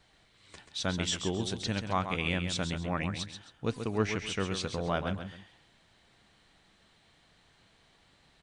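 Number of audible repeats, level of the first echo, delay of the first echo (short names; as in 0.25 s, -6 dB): 2, -8.0 dB, 0.134 s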